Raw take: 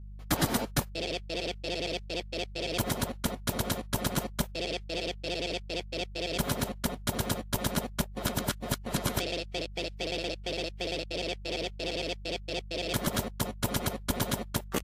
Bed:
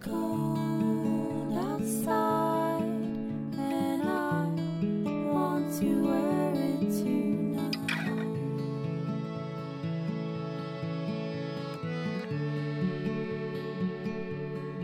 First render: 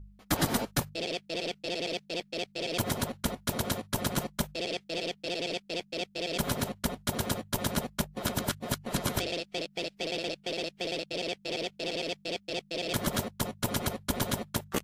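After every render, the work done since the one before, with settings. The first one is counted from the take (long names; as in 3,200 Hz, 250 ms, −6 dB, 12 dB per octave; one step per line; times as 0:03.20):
hum removal 50 Hz, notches 3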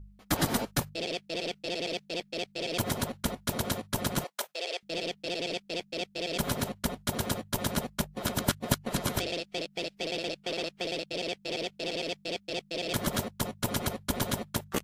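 0:04.24–0:04.83: high-pass filter 460 Hz 24 dB per octave
0:08.38–0:08.92: transient designer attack +6 dB, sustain −1 dB
0:10.42–0:10.84: parametric band 1,200 Hz +6 dB 0.83 octaves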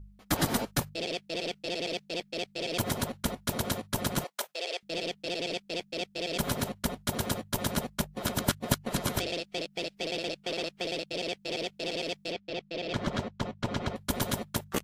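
0:12.32–0:13.96: high-frequency loss of the air 150 metres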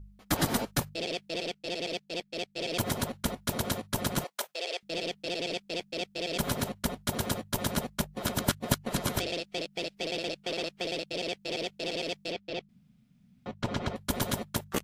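0:01.43–0:02.57: expander for the loud parts, over −45 dBFS
0:12.69–0:13.46: fill with room tone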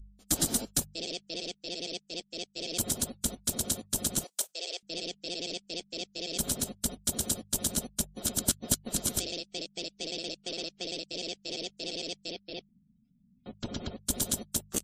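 gate on every frequency bin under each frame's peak −30 dB strong
octave-band graphic EQ 125/500/1,000/2,000/8,000 Hz −8/−4/−11/−10/+11 dB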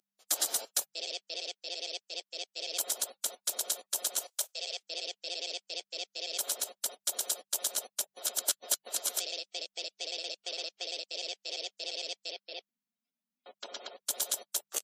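high-pass filter 530 Hz 24 dB per octave
parametric band 8,600 Hz −4 dB 0.35 octaves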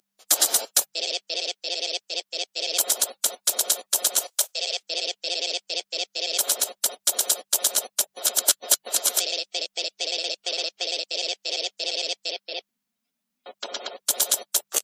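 level +10.5 dB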